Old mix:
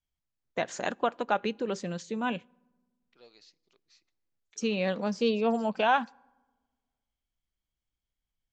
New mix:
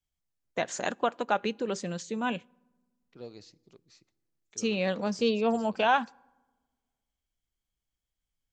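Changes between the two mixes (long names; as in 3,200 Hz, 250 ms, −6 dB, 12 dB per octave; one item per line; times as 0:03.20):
second voice: remove resonant band-pass 3,800 Hz, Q 0.5
master: remove high-frequency loss of the air 61 metres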